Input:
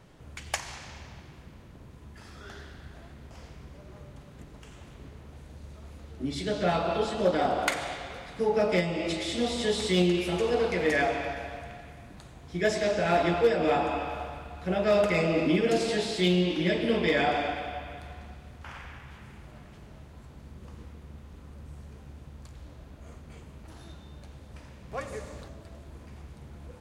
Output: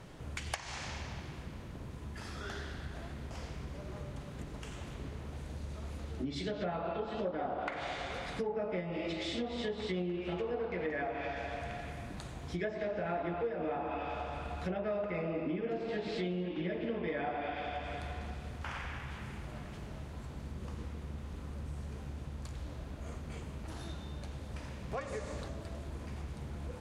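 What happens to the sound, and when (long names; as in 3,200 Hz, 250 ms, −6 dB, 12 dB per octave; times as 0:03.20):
0:15.55–0:15.97: delay throw 510 ms, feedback 45%, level −10 dB
whole clip: treble cut that deepens with the level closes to 1,900 Hz, closed at −23 dBFS; downward compressor 4 to 1, threshold −40 dBFS; level +4 dB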